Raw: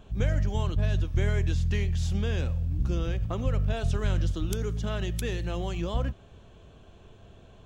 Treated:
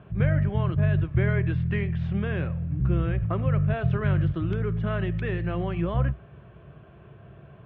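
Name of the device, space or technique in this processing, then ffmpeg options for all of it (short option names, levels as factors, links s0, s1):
bass cabinet: -af "highpass=f=77:w=0.5412,highpass=f=77:w=1.3066,equalizer=f=83:t=q:w=4:g=-9,equalizer=f=140:t=q:w=4:g=7,equalizer=f=250:t=q:w=4:g=-10,equalizer=f=480:t=q:w=4:g=-6,equalizer=f=840:t=q:w=4:g=-7,lowpass=f=2200:w=0.5412,lowpass=f=2200:w=1.3066,equalizer=f=61:t=o:w=0.32:g=6,volume=2.11"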